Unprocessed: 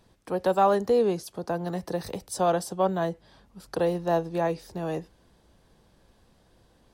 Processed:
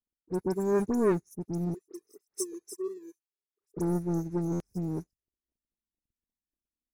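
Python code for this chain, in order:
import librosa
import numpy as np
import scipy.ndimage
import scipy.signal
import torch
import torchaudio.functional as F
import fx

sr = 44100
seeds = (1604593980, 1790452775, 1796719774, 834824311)

y = fx.brickwall_bandstop(x, sr, low_hz=460.0, high_hz=5000.0)
y = fx.dynamic_eq(y, sr, hz=760.0, q=0.87, threshold_db=-46.0, ratio=4.0, max_db=-4)
y = fx.env_flanger(y, sr, rest_ms=4.1, full_db=-30.0)
y = fx.steep_highpass(y, sr, hz=360.0, slope=36, at=(1.74, 3.77))
y = fx.leveller(y, sr, passes=3)
y = fx.peak_eq(y, sr, hz=3100.0, db=-13.5, octaves=0.37)
y = fx.dispersion(y, sr, late='highs', ms=75.0, hz=2600.0)
y = fx.buffer_glitch(y, sr, at_s=(4.52,), block=512, repeats=6)
y = fx.upward_expand(y, sr, threshold_db=-41.0, expansion=2.5)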